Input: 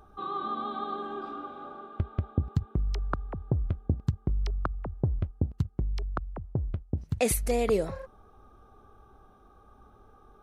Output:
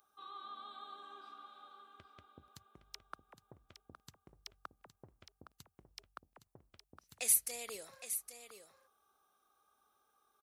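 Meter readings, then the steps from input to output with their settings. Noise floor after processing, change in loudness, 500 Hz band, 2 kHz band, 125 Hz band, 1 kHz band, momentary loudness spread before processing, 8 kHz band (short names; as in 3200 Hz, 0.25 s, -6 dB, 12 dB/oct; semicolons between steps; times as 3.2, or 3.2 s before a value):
-82 dBFS, -5.0 dB, -23.0 dB, -10.0 dB, -36.0 dB, -15.5 dB, 11 LU, +2.0 dB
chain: differentiator; on a send: echo 0.814 s -10 dB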